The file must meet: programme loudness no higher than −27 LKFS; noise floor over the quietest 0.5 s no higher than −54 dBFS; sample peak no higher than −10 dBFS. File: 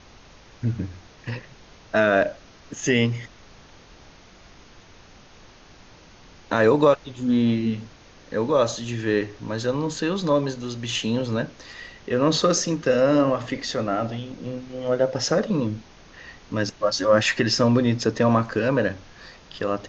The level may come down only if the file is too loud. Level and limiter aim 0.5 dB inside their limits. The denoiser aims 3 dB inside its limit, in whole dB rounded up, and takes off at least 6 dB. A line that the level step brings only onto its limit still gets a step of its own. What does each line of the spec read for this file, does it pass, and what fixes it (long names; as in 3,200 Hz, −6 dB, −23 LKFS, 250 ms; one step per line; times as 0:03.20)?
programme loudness −23.0 LKFS: out of spec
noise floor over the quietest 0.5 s −49 dBFS: out of spec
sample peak −6.0 dBFS: out of spec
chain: broadband denoise 6 dB, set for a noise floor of −49 dBFS
level −4.5 dB